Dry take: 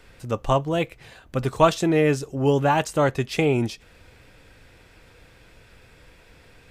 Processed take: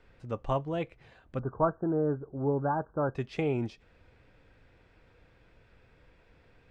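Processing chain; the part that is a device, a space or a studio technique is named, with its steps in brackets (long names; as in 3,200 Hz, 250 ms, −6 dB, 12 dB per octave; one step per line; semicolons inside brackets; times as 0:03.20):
through cloth (low-pass filter 6,700 Hz 12 dB per octave; high-shelf EQ 3,400 Hz −12.5 dB)
0:01.39–0:03.15: Chebyshev low-pass filter 1,600 Hz, order 8
level −8.5 dB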